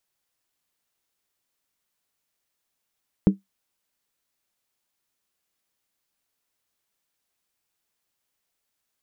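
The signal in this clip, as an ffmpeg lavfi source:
ffmpeg -f lavfi -i "aevalsrc='0.398*pow(10,-3*t/0.15)*sin(2*PI*195*t)+0.168*pow(10,-3*t/0.119)*sin(2*PI*310.8*t)+0.0708*pow(10,-3*t/0.103)*sin(2*PI*416.5*t)+0.0299*pow(10,-3*t/0.099)*sin(2*PI*447.7*t)+0.0126*pow(10,-3*t/0.092)*sin(2*PI*517.3*t)':duration=0.63:sample_rate=44100" out.wav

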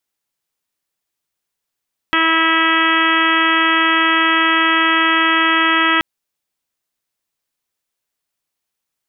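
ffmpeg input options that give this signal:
ffmpeg -f lavfi -i "aevalsrc='0.0944*sin(2*PI*325*t)+0.0299*sin(2*PI*650*t)+0.075*sin(2*PI*975*t)+0.141*sin(2*PI*1300*t)+0.0944*sin(2*PI*1625*t)+0.133*sin(2*PI*1950*t)+0.0473*sin(2*PI*2275*t)+0.075*sin(2*PI*2600*t)+0.0473*sin(2*PI*2925*t)+0.075*sin(2*PI*3250*t)':duration=3.88:sample_rate=44100" out.wav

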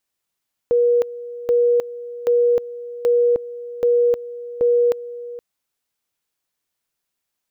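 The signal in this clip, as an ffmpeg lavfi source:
ffmpeg -f lavfi -i "aevalsrc='pow(10,(-12.5-16.5*gte(mod(t,0.78),0.31))/20)*sin(2*PI*480*t)':duration=4.68:sample_rate=44100" out.wav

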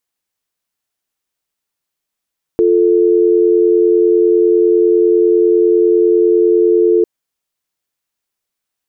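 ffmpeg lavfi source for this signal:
ffmpeg -f lavfi -i "aevalsrc='0.299*(sin(2*PI*350*t)+sin(2*PI*440*t))':duration=4.45:sample_rate=44100" out.wav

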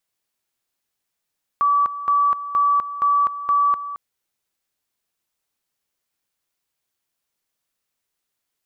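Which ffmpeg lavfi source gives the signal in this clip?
ffmpeg -f lavfi -i "aevalsrc='pow(10,(-14-13*gte(mod(t,0.47),0.25))/20)*sin(2*PI*1150*t)':duration=2.35:sample_rate=44100" out.wav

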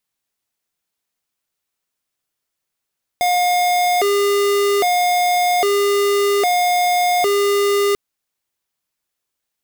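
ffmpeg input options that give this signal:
ffmpeg -f lavfi -i "aevalsrc='0.158*(2*lt(mod((559*t+155/0.62*(0.5-abs(mod(0.62*t,1)-0.5))),1),0.5)-1)':duration=4.74:sample_rate=44100" out.wav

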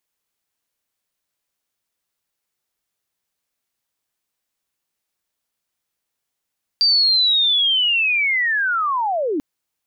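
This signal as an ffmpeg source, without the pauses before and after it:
ffmpeg -f lavfi -i "aevalsrc='pow(10,(-12-6.5*t/2.59)/20)*sin(2*PI*(4700*t-4430*t*t/(2*2.59)))':duration=2.59:sample_rate=44100" out.wav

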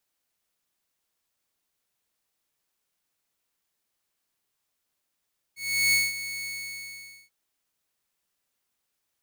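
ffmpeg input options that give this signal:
ffmpeg -f lavfi -i "aevalsrc='0.158*(2*mod(2210*t,1)-1)':duration=1.736:sample_rate=44100,afade=type=in:duration=0.367,afade=type=out:start_time=0.367:duration=0.196:silence=0.211,afade=type=out:start_time=0.89:duration=0.846" out.wav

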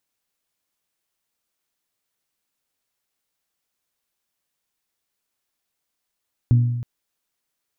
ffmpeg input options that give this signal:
ffmpeg -f lavfi -i "aevalsrc='0.316*pow(10,-3*t/1.16)*sin(2*PI*120*t)+0.0794*pow(10,-3*t/0.714)*sin(2*PI*240*t)+0.02*pow(10,-3*t/0.629)*sin(2*PI*288*t)+0.00501*pow(10,-3*t/0.538)*sin(2*PI*360*t)+0.00126*pow(10,-3*t/0.44)*sin(2*PI*480*t)':duration=0.32:sample_rate=44100" out.wav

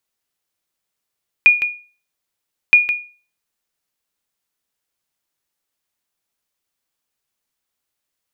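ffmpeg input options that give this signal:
ffmpeg -f lavfi -i "aevalsrc='0.794*(sin(2*PI*2440*mod(t,1.27))*exp(-6.91*mod(t,1.27)/0.37)+0.355*sin(2*PI*2440*max(mod(t,1.27)-0.16,0))*exp(-6.91*max(mod(t,1.27)-0.16,0)/0.37))':duration=2.54:sample_rate=44100" out.wav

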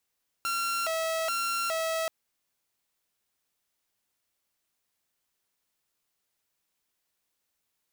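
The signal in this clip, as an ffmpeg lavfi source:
ffmpeg -f lavfi -i "aevalsrc='0.0562*(2*mod((1009.5*t+360.5/1.2*(0.5-abs(mod(1.2*t,1)-0.5))),1)-1)':duration=1.63:sample_rate=44100" out.wav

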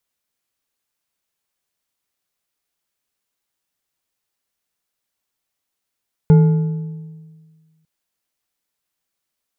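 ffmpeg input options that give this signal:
ffmpeg -f lavfi -i "aevalsrc='0.562*pow(10,-3*t/1.68)*sin(2*PI*159*t)+0.158*pow(10,-3*t/1.239)*sin(2*PI*438.4*t)+0.0447*pow(10,-3*t/1.013)*sin(2*PI*859.2*t)+0.0126*pow(10,-3*t/0.871)*sin(2*PI*1420.3*t)+0.00355*pow(10,-3*t/0.772)*sin(2*PI*2121.1*t)':duration=1.55:sample_rate=44100" out.wav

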